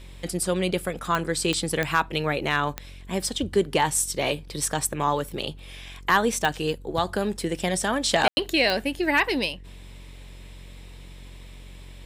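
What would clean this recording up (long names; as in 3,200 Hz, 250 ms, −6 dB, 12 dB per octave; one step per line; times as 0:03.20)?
clipped peaks rebuilt −9.5 dBFS
click removal
hum removal 45.6 Hz, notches 11
ambience match 0:08.28–0:08.37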